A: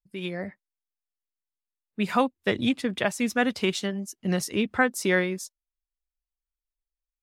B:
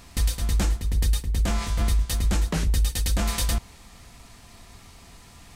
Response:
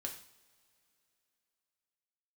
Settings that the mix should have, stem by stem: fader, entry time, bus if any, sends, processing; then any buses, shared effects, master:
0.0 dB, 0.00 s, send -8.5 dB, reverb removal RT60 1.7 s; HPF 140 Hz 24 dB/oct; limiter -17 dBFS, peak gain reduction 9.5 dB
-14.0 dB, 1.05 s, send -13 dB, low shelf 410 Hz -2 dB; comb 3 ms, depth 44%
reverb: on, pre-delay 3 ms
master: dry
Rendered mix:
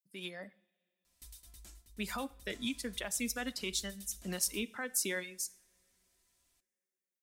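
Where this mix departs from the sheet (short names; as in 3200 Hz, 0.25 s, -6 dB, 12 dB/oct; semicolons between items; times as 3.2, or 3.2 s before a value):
stem B -14.0 dB -> -22.0 dB; master: extra pre-emphasis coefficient 0.8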